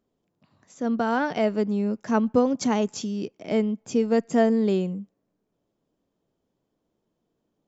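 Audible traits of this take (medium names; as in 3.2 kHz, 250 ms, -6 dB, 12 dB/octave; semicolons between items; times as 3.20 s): noise floor -78 dBFS; spectral tilt -5.5 dB/octave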